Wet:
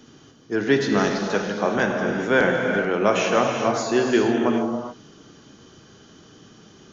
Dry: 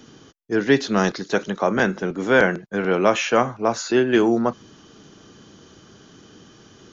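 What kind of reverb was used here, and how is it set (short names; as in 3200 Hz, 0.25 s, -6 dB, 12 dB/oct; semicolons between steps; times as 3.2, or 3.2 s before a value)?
non-linear reverb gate 0.45 s flat, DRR 1.5 dB; gain -3 dB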